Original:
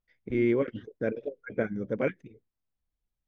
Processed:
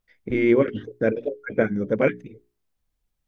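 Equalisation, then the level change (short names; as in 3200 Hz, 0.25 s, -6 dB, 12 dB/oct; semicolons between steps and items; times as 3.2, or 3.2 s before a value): notches 60/120/180/240/300/360/420 Hz; +8.5 dB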